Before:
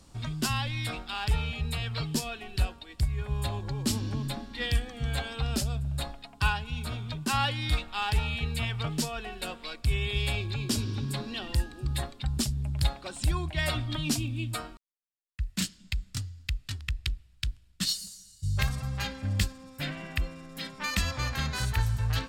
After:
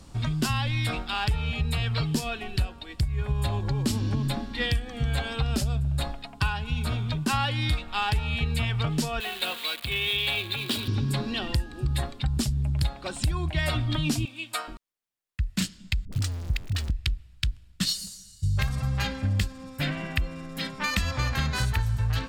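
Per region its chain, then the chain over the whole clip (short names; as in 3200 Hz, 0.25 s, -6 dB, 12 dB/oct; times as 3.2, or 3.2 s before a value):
9.2–10.88 switching spikes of -28.5 dBFS + HPF 580 Hz 6 dB/oct + resonant high shelf 4600 Hz -7 dB, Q 3
14.25–14.68 HPF 680 Hz + mismatched tape noise reduction decoder only
16.05–16.9 zero-crossing step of -39.5 dBFS + dispersion highs, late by 76 ms, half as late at 360 Hz
whole clip: tone controls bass +2 dB, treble -3 dB; compressor, threshold -28 dBFS; gain +6 dB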